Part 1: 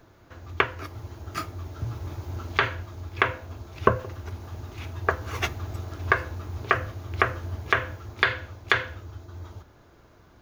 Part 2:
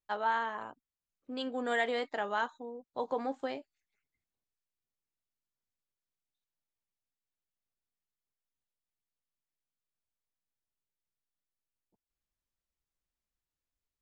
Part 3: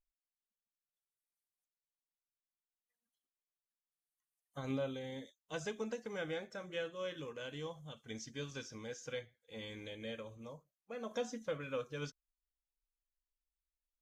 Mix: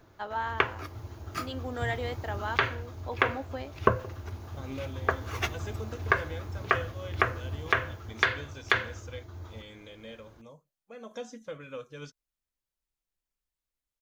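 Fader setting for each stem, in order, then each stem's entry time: −3.0, −2.0, −1.0 decibels; 0.00, 0.10, 0.00 seconds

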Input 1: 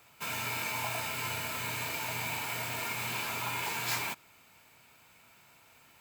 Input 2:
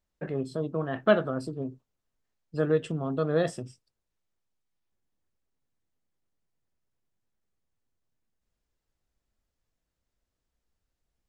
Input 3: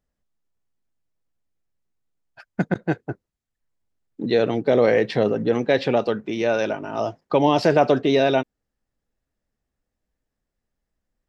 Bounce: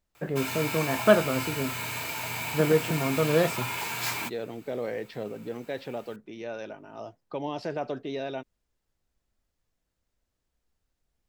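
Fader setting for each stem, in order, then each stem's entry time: +2.0, +2.5, −15.5 decibels; 0.15, 0.00, 0.00 seconds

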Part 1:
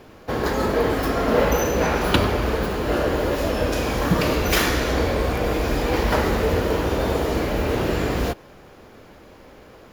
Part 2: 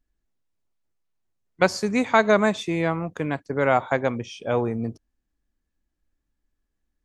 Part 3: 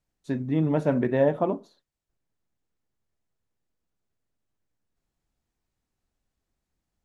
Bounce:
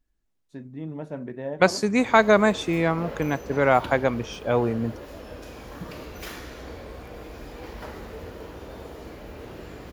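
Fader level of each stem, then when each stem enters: −18.0, +1.0, −11.0 decibels; 1.70, 0.00, 0.25 seconds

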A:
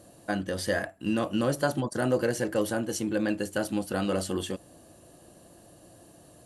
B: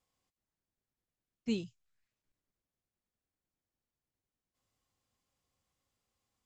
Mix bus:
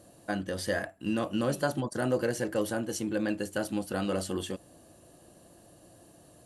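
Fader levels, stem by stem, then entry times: −2.5, −11.5 decibels; 0.00, 0.00 seconds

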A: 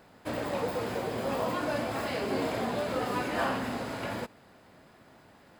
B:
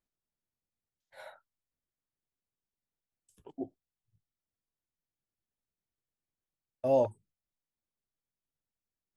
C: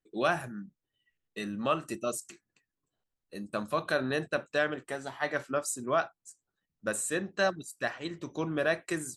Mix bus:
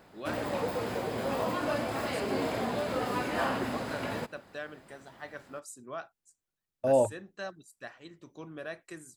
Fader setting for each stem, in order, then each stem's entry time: −0.5, +2.0, −12.0 decibels; 0.00, 0.00, 0.00 seconds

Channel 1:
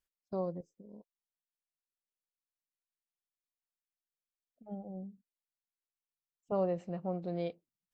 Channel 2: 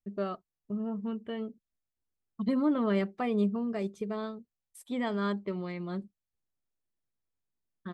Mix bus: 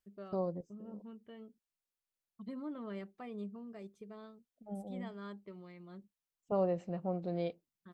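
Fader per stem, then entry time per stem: 0.0, −15.5 decibels; 0.00, 0.00 seconds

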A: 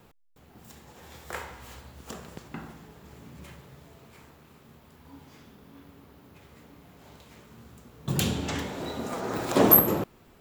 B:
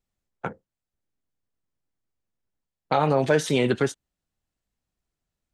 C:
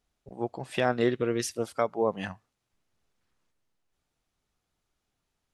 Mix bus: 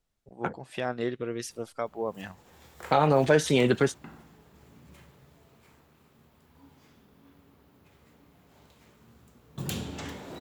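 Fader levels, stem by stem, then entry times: −7.0, −0.5, −5.5 decibels; 1.50, 0.00, 0.00 seconds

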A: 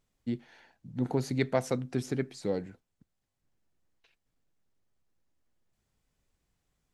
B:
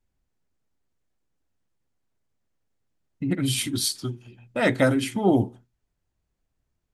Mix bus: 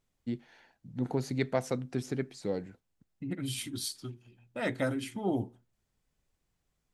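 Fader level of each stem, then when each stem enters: −2.0, −11.0 decibels; 0.00, 0.00 seconds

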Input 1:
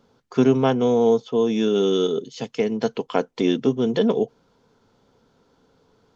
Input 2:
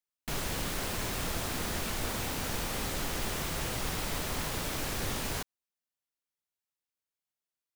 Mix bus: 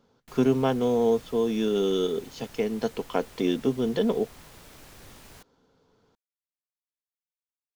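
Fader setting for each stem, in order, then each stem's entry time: −5.0, −15.0 decibels; 0.00, 0.00 seconds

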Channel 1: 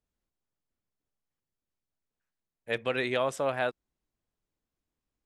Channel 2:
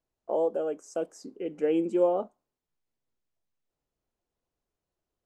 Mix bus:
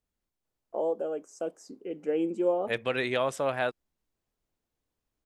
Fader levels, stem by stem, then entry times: +0.5, −2.5 decibels; 0.00, 0.45 seconds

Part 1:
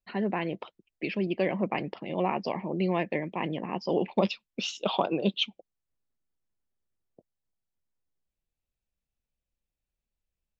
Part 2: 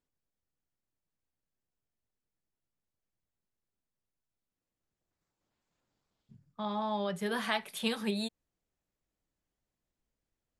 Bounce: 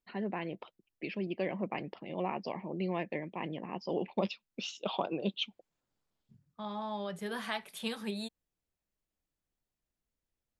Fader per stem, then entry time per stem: −7.0, −4.5 decibels; 0.00, 0.00 seconds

